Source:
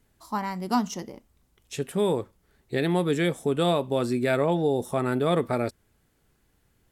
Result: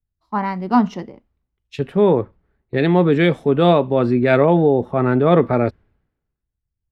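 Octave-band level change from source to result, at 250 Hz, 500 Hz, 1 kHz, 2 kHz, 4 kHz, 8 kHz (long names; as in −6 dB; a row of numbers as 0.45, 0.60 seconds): +9.5 dB, +9.5 dB, +8.5 dB, +8.0 dB, +3.0 dB, below −10 dB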